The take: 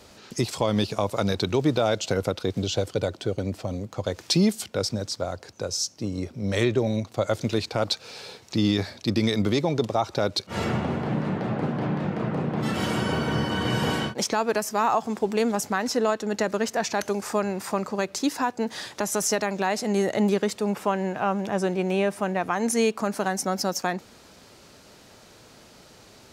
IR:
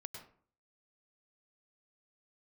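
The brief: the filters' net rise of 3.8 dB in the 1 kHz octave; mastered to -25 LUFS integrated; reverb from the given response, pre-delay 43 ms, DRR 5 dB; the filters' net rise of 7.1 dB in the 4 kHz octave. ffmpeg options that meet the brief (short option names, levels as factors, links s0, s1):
-filter_complex "[0:a]equalizer=f=1000:t=o:g=4.5,equalizer=f=4000:t=o:g=8.5,asplit=2[s0][s1];[1:a]atrim=start_sample=2205,adelay=43[s2];[s1][s2]afir=irnorm=-1:irlink=0,volume=0.891[s3];[s0][s3]amix=inputs=2:normalize=0,volume=0.75"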